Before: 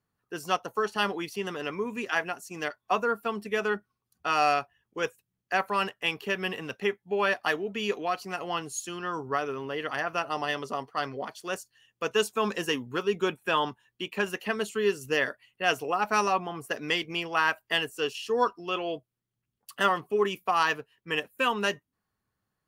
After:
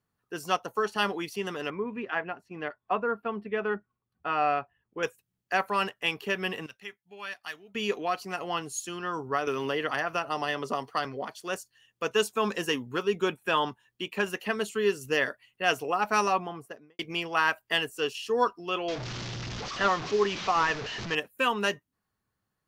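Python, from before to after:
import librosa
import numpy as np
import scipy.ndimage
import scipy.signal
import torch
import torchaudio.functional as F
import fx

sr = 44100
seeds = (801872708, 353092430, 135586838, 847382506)

y = fx.air_absorb(x, sr, metres=430.0, at=(1.7, 5.03))
y = fx.tone_stack(y, sr, knobs='5-5-5', at=(6.66, 7.75))
y = fx.band_squash(y, sr, depth_pct=100, at=(9.47, 11.05))
y = fx.studio_fade_out(y, sr, start_s=16.34, length_s=0.65)
y = fx.delta_mod(y, sr, bps=32000, step_db=-30.0, at=(18.88, 21.15))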